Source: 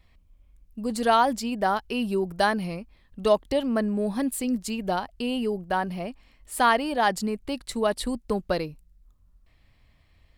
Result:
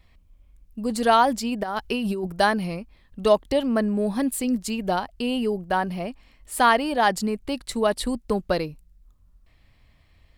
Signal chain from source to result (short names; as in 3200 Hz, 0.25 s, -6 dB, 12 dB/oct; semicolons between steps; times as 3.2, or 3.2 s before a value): 1.63–2.27 negative-ratio compressor -29 dBFS, ratio -1; gain +2.5 dB